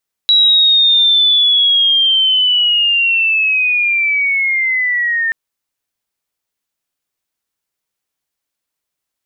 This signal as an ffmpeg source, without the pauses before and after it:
-f lavfi -i "aevalsrc='pow(10,(-6.5-6.5*t/5.03)/20)*sin(2*PI*(3900*t-2100*t*t/(2*5.03)))':d=5.03:s=44100"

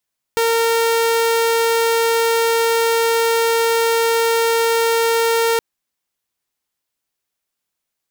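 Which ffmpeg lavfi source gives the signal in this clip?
-f lavfi -i "aevalsrc='0.266*(2*mod(459*t,1)-1)':d=5.22:s=44100"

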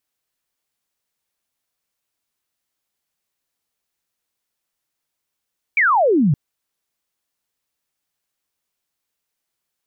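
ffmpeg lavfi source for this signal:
-f lavfi -i "aevalsrc='0.251*clip(t/0.002,0,1)*clip((0.57-t)/0.002,0,1)*sin(2*PI*2400*0.57/log(130/2400)*(exp(log(130/2400)*t/0.57)-1))':d=0.57:s=44100"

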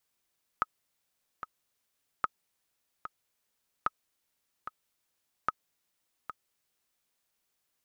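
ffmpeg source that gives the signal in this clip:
-f lavfi -i "aevalsrc='pow(10,(-13.5-11.5*gte(mod(t,2*60/74),60/74))/20)*sin(2*PI*1270*mod(t,60/74))*exp(-6.91*mod(t,60/74)/0.03)':d=6.48:s=44100"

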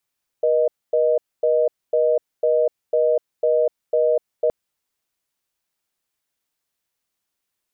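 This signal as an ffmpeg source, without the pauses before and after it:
-f lavfi -i "aevalsrc='0.133*(sin(2*PI*480*t)+sin(2*PI*620*t))*clip(min(mod(t,0.5),0.25-mod(t,0.5))/0.005,0,1)':d=4.07:s=44100"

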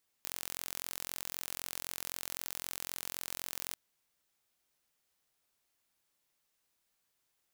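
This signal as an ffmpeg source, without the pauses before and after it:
-f lavfi -i "aevalsrc='0.251*eq(mod(n,1005),0)':d=3.49:s=44100"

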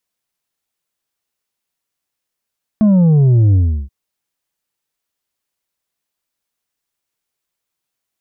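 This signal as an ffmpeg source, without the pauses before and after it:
-f lavfi -i "aevalsrc='0.398*clip((1.08-t)/0.35,0,1)*tanh(1.78*sin(2*PI*220*1.08/log(65/220)*(exp(log(65/220)*t/1.08)-1)))/tanh(1.78)':d=1.08:s=44100"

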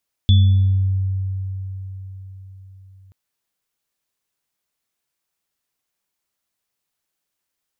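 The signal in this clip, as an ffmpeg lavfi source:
-f lavfi -i "aevalsrc='0.398*pow(10,-3*t/4.58)*sin(2*PI*95.5*t)+0.0708*pow(10,-3*t/1.57)*sin(2*PI*217*t)+0.0944*pow(10,-3*t/0.66)*sin(2*PI*3450*t)':d=2.83:s=44100"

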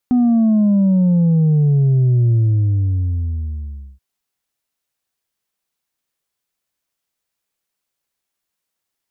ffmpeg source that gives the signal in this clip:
-f lavfi -i "aevalsrc='0.282*clip((3.88-t)/1.67,0,1)*tanh(1.33*sin(2*PI*250*3.88/log(65/250)*(exp(log(65/250)*t/3.88)-1)))/tanh(1.33)':d=3.88:s=44100"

